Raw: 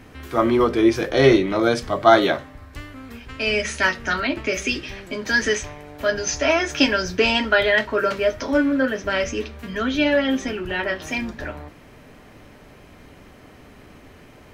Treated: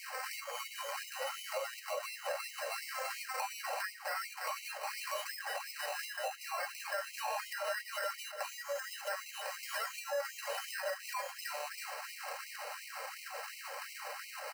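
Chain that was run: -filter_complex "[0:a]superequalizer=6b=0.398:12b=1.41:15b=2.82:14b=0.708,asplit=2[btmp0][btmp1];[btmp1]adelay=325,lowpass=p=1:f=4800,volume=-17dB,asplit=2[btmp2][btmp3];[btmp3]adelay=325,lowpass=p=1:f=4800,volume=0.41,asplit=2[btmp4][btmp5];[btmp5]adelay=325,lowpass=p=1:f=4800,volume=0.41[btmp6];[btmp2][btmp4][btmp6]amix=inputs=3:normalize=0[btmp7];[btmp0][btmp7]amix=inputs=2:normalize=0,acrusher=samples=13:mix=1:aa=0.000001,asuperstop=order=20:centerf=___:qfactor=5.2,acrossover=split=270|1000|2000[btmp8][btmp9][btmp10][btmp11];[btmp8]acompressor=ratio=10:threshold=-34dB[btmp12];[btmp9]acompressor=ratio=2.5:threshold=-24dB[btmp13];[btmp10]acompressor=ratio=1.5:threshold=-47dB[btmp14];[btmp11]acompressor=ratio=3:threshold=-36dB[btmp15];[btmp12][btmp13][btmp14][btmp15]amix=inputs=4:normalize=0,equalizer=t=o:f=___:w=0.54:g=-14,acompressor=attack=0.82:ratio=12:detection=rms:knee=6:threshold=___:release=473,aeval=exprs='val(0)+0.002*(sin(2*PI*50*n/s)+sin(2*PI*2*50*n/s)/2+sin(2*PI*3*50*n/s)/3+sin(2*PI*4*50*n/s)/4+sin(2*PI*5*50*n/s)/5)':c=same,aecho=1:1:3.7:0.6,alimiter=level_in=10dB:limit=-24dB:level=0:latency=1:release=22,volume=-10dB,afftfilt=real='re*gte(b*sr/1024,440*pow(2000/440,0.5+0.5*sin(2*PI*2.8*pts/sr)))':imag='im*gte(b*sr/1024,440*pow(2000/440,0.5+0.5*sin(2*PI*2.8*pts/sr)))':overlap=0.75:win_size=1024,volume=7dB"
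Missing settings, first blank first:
3500, 210, -31dB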